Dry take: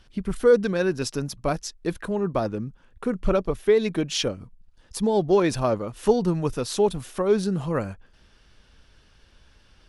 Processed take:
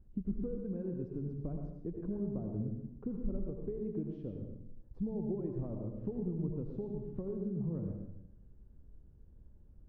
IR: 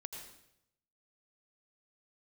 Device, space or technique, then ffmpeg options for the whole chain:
television next door: -filter_complex "[0:a]acompressor=threshold=0.0316:ratio=5,lowpass=280[s0];[1:a]atrim=start_sample=2205[s1];[s0][s1]afir=irnorm=-1:irlink=0,volume=1.33"

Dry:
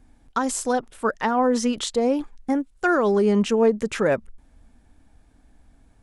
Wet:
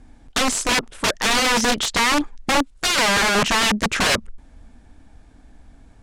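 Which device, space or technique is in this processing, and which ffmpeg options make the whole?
overflowing digital effects unit: -af "aeval=exprs='(mod(10*val(0)+1,2)-1)/10':c=same,lowpass=8300,volume=2.37"

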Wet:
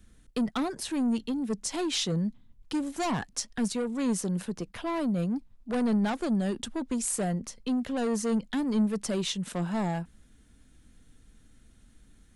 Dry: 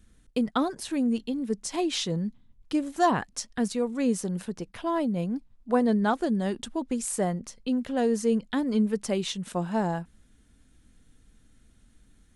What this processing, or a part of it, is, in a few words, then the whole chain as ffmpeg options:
one-band saturation: -filter_complex "[0:a]acrossover=split=200|4000[s0][s1][s2];[s1]asoftclip=type=tanh:threshold=0.0335[s3];[s0][s3][s2]amix=inputs=3:normalize=0,volume=1.19"

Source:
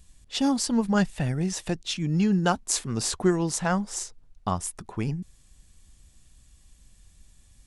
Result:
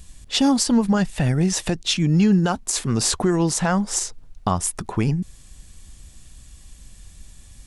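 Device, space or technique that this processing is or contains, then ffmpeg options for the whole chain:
loud club master: -af "acompressor=threshold=0.0251:ratio=1.5,asoftclip=type=hard:threshold=0.299,alimiter=level_in=9.44:limit=0.891:release=50:level=0:latency=1,volume=0.376"

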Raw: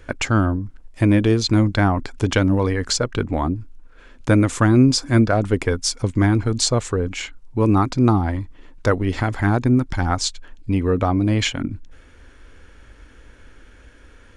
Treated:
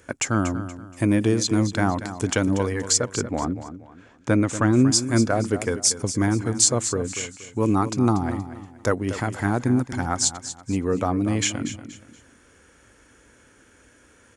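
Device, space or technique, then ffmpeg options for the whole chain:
budget condenser microphone: -filter_complex "[0:a]asettb=1/sr,asplit=3[s0][s1][s2];[s0]atrim=end=3.014[s3];[s1]atrim=start=3.01:end=4.81,asetpts=PTS-STARTPTS,afade=t=in:d=0.004:c=qsin,afade=t=out:st=1.796:d=0.004:c=qsin,lowpass=5300[s4];[s2]atrim=start=4.806[s5];[s3][s4]acrossfade=d=0.004:c1=hsin:c2=qsin[s6];[s6][s5]acrossfade=d=0.004:c1=qsin:c2=hsin,highpass=110,highshelf=f=5400:t=q:w=1.5:g=8,aecho=1:1:237|474|711:0.251|0.0804|0.0257,volume=0.668"

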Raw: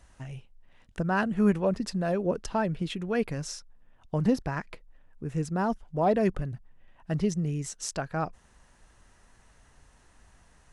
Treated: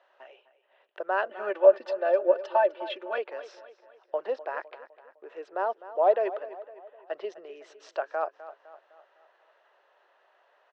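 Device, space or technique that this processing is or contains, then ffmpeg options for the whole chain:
phone earpiece: -filter_complex "[0:a]asettb=1/sr,asplit=3[s0][s1][s2];[s0]atrim=end=1.294[s3];[s1]atrim=start=1.29:end=3.18,asetpts=PTS-STARTPTS,afade=t=in:d=0.004:c=qsin,afade=t=out:st=1.886:d=0.004:c=qsin,aecho=1:1:3.4:0.98,atrim=end_sample=83349[s4];[s2]atrim=start=3.176[s5];[s3][s4]acrossfade=d=0.004:c1=hsin:c2=qsin[s6];[s6][s5]acrossfade=d=0.004:c1=qsin:c2=hsin,highpass=f=500:w=0.5412,highpass=f=500:w=1.3066,highpass=360,equalizer=f=370:t=q:w=4:g=9,equalizer=f=590:t=q:w=4:g=8,equalizer=f=2200:t=q:w=4:g=-6,lowpass=f=3300:w=0.5412,lowpass=f=3300:w=1.3066,asplit=2[s7][s8];[s8]adelay=254,lowpass=f=5000:p=1,volume=0.178,asplit=2[s9][s10];[s10]adelay=254,lowpass=f=5000:p=1,volume=0.49,asplit=2[s11][s12];[s12]adelay=254,lowpass=f=5000:p=1,volume=0.49,asplit=2[s13][s14];[s14]adelay=254,lowpass=f=5000:p=1,volume=0.49,asplit=2[s15][s16];[s16]adelay=254,lowpass=f=5000:p=1,volume=0.49[s17];[s7][s9][s11][s13][s15][s17]amix=inputs=6:normalize=0"

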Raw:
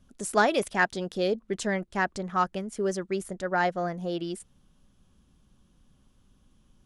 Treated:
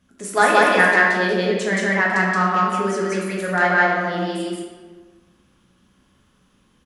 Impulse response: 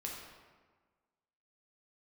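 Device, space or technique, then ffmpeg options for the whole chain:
stadium PA: -filter_complex "[0:a]highpass=f=140:p=1,equalizer=f=1900:t=o:w=1.2:g=7.5,aecho=1:1:174.9|207:1|0.316[s0];[1:a]atrim=start_sample=2205[s1];[s0][s1]afir=irnorm=-1:irlink=0,volume=1.68"

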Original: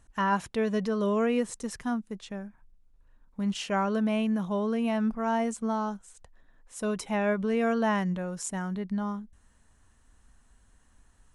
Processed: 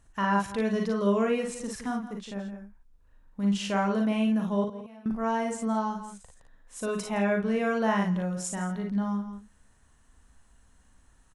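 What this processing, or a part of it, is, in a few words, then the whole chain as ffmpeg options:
ducked delay: -filter_complex "[0:a]asettb=1/sr,asplit=3[s0][s1][s2];[s0]atrim=end=4.644[s3];[s1]atrim=start=4.64:end=5.06,asetpts=PTS-STARTPTS,afade=t=in:d=0.004:c=qsin,afade=t=out:st=0.416:d=0.004:c=qsin,agate=range=0.0224:threshold=0.224:ratio=3:detection=peak[s4];[s2]atrim=start=5.056[s5];[s3][s4]acrossfade=d=0.004:c1=hsin:c2=qsin[s6];[s6][s5]acrossfade=d=0.004:c1=qsin:c2=hsin,aecho=1:1:40|55:0.531|0.596,asplit=3[s7][s8][s9];[s8]adelay=166,volume=0.422[s10];[s9]apad=whole_len=509930[s11];[s10][s11]sidechaincompress=threshold=0.02:ratio=10:attack=5.7:release=272[s12];[s7][s12]amix=inputs=2:normalize=0,volume=0.841"

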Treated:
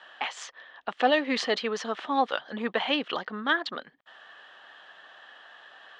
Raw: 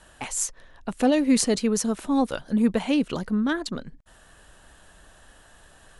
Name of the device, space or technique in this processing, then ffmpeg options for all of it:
phone earpiece: -af "highpass=490,equalizer=f=770:t=q:w=4:g=5,equalizer=f=1200:t=q:w=4:g=6,equalizer=f=1800:t=q:w=4:g=8,equalizer=f=3200:t=q:w=4:g=9,lowpass=f=4400:w=0.5412,lowpass=f=4400:w=1.3066"

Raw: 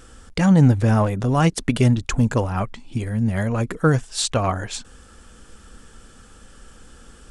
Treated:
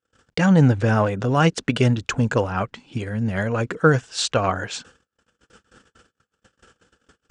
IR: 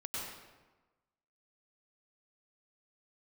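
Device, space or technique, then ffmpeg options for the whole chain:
car door speaker: -af "agate=range=0.00794:threshold=0.00891:ratio=16:detection=peak,highpass=110,equalizer=f=230:t=q:w=4:g=-3,equalizer=f=480:t=q:w=4:g=4,equalizer=f=1500:t=q:w=4:g=6,equalizer=f=2800:t=q:w=4:g=4,lowpass=f=7400:w=0.5412,lowpass=f=7400:w=1.3066"

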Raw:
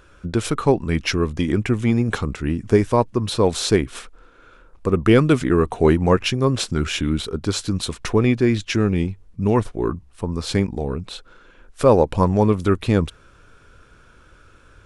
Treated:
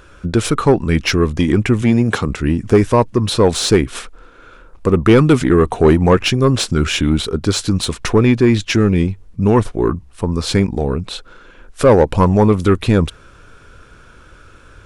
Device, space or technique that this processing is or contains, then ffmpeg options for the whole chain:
saturation between pre-emphasis and de-emphasis: -filter_complex "[0:a]asettb=1/sr,asplit=3[s0][s1][s2];[s0]atrim=end=1.824[s3];[s1]atrim=start=1.82:end=2.29,asetpts=PTS-STARTPTS,afade=t=in:d=0.004:c=qsin,afade=t=out:st=0.466:d=0.004:c=qsin,highpass=100[s4];[s2]atrim=start=2.286[s5];[s3][s4]acrossfade=d=0.004:c1=hsin:c2=qsin[s6];[s6][s5]acrossfade=d=0.004:c1=qsin:c2=hsin,highshelf=f=3900:g=12,asoftclip=type=tanh:threshold=0.335,highshelf=f=3900:g=-12,volume=2.24"

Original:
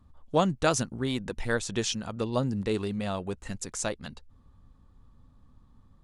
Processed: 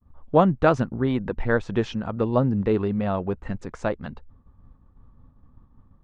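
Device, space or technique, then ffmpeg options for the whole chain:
hearing-loss simulation: -filter_complex "[0:a]asettb=1/sr,asplit=3[s0][s1][s2];[s0]atrim=end=0.964[s3];[s1]atrim=start=0.96:end=1.56,asetpts=PTS-STARTPTS,afade=t=in:d=0.004:c=qsin,afade=t=out:st=0.596:d=0.004:c=qsin,bandreject=f=6200:w=8.5[s4];[s2]atrim=start=1.556[s5];[s3][s4]acrossfade=d=0.004:c1=hsin:c2=qsin[s6];[s6][s5]acrossfade=d=0.004:c1=qsin:c2=hsin,lowpass=1600,agate=range=0.0224:threshold=0.00282:ratio=3:detection=peak,volume=2.24"

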